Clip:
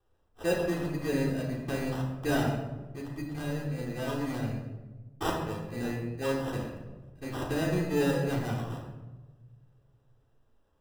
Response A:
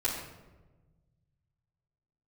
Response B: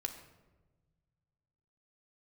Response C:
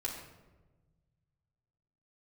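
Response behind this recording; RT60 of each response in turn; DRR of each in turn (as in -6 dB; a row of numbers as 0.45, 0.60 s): A; 1.2, 1.2, 1.2 s; -10.5, 4.0, -4.5 dB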